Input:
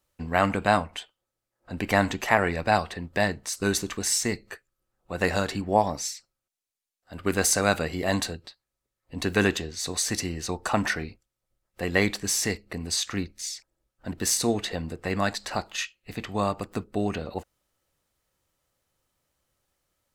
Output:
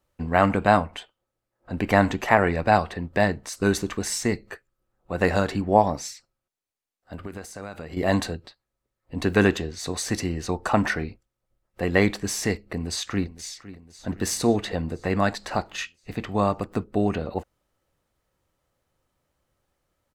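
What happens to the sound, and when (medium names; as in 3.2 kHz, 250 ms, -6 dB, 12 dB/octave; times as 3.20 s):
7.15–7.97 s: compression 8:1, threshold -36 dBFS
12.60–13.51 s: echo throw 510 ms, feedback 60%, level -16.5 dB
whole clip: treble shelf 2.4 kHz -9.5 dB; trim +4.5 dB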